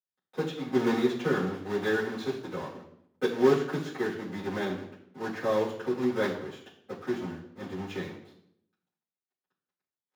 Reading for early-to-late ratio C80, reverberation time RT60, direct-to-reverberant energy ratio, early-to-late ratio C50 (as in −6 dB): 10.5 dB, 0.75 s, −11.0 dB, 8.0 dB